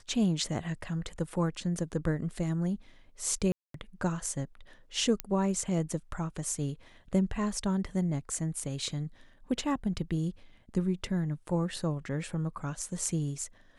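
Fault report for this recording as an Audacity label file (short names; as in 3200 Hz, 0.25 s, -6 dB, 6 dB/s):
3.520000	3.740000	gap 0.223 s
5.200000	5.200000	pop -13 dBFS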